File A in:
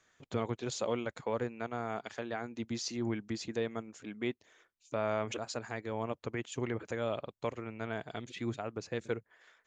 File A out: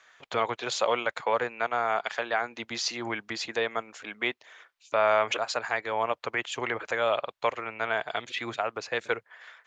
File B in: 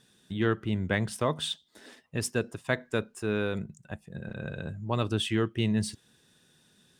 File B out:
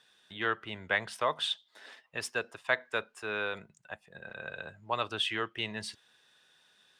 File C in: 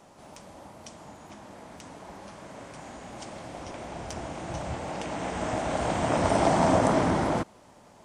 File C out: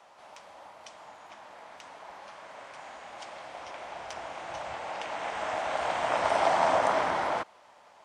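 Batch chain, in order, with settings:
three-way crossover with the lows and the highs turned down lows −21 dB, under 580 Hz, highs −12 dB, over 4,600 Hz
normalise the peak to −12 dBFS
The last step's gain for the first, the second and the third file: +14.0, +3.0, +2.0 decibels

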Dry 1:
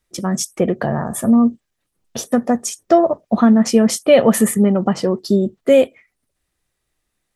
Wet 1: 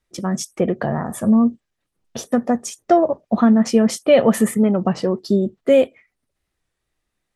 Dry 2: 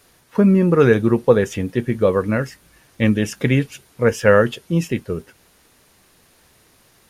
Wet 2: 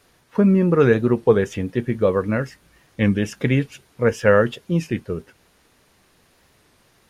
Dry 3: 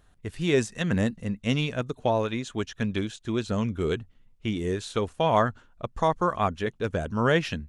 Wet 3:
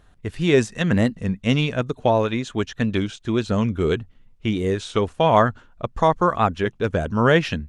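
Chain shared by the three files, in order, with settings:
high-shelf EQ 7,000 Hz −8 dB
wow of a warped record 33 1/3 rpm, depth 100 cents
normalise the peak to −3 dBFS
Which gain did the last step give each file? −2.0, −2.0, +6.0 decibels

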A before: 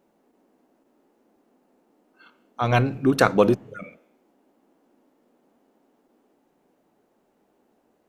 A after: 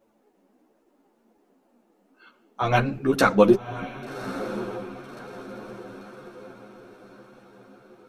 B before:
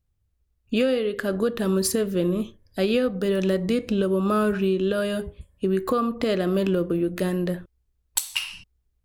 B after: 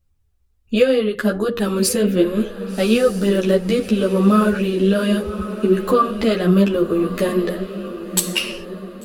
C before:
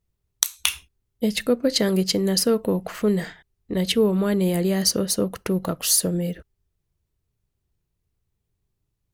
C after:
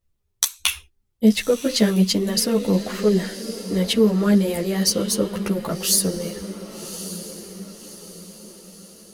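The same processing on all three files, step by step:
flanger 1.3 Hz, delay 1.5 ms, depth 4.6 ms, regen +60%
feedback delay with all-pass diffusion 1,140 ms, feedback 46%, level −12 dB
string-ensemble chorus
normalise the peak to −2 dBFS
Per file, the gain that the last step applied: +7.0, +13.0, +8.5 decibels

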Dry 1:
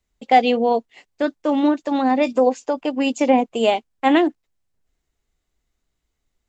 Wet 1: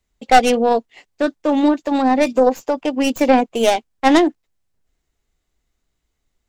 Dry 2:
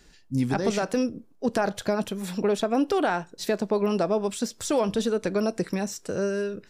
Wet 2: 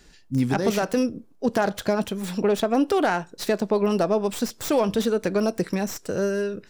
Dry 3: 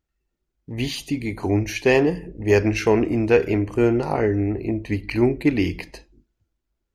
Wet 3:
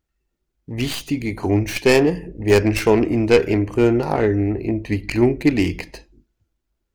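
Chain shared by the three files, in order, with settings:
stylus tracing distortion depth 0.17 ms
level +2.5 dB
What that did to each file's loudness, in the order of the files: +2.5, +2.5, +2.5 LU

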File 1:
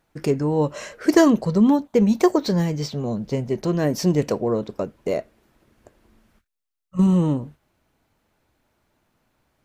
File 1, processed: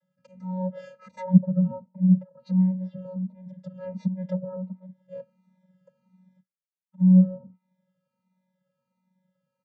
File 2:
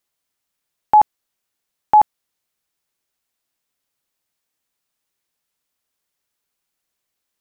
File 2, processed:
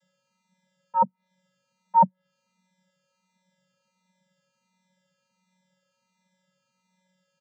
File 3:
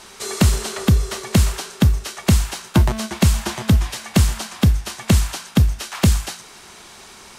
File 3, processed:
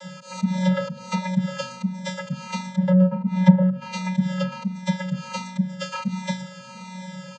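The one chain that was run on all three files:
volume swells 251 ms
channel vocoder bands 16, square 185 Hz
treble cut that deepens with the level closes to 830 Hz, closed at −24.5 dBFS
barber-pole flanger 3.1 ms −1.4 Hz
loudness normalisation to −24 LKFS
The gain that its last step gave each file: +3.0, +12.0, +14.5 decibels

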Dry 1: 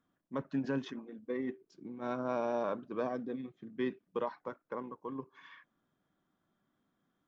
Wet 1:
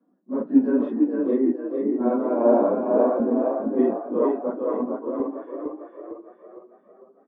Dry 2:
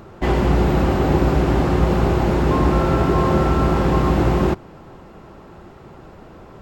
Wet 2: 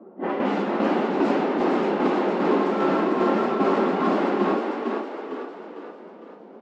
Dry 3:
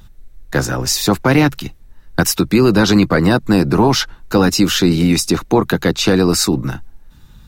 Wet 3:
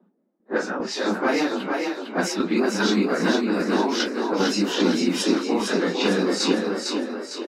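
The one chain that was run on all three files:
random phases in long frames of 100 ms
low-pass that shuts in the quiet parts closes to 510 Hz, open at −8.5 dBFS
Butterworth high-pass 190 Hz 72 dB per octave
high-shelf EQ 10,000 Hz −11 dB
downward compressor, threshold −17 dBFS
shaped tremolo saw down 2.5 Hz, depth 45%
on a send: echo with shifted repeats 454 ms, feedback 48%, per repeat +30 Hz, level −4 dB
on the sum: loudness normalisation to −23 LKFS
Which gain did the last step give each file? +18.0, 0.0, 0.0 decibels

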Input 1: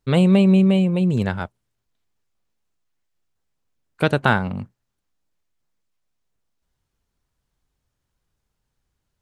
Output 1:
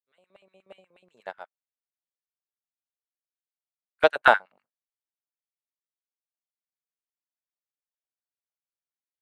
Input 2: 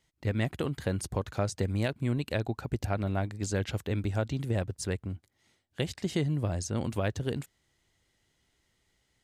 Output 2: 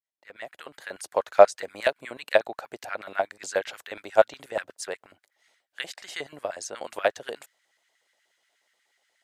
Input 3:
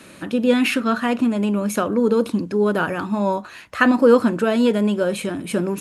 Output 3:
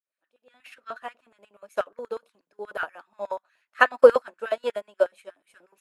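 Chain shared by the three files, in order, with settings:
fade in at the beginning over 1.24 s
auto-filter high-pass square 8.3 Hz 620–1,600 Hz
expander for the loud parts 2.5 to 1, over −31 dBFS
normalise the peak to −1.5 dBFS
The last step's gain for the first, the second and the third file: +0.5, +14.5, +2.5 decibels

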